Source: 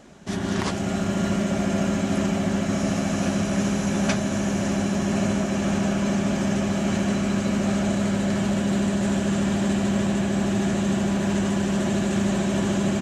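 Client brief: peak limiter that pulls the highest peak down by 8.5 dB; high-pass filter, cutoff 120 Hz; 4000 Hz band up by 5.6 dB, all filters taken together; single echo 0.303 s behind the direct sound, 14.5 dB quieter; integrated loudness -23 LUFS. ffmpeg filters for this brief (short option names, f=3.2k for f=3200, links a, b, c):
-af "highpass=120,equalizer=f=4k:t=o:g=7.5,alimiter=limit=-17.5dB:level=0:latency=1,aecho=1:1:303:0.188,volume=3dB"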